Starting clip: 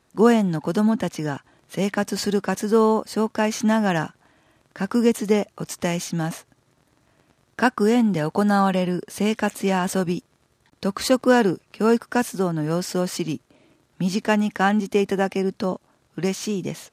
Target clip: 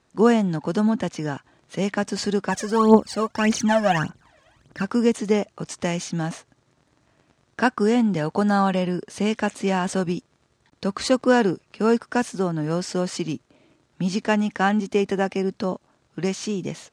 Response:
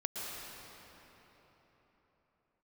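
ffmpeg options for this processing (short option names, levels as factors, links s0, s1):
-filter_complex "[0:a]lowpass=f=8500:w=0.5412,lowpass=f=8500:w=1.3066,asplit=3[s0][s1][s2];[s0]afade=t=out:st=2.49:d=0.02[s3];[s1]aphaser=in_gain=1:out_gain=1:delay=1.9:decay=0.75:speed=1.7:type=triangular,afade=t=in:st=2.49:d=0.02,afade=t=out:st=4.82:d=0.02[s4];[s2]afade=t=in:st=4.82:d=0.02[s5];[s3][s4][s5]amix=inputs=3:normalize=0,volume=0.891"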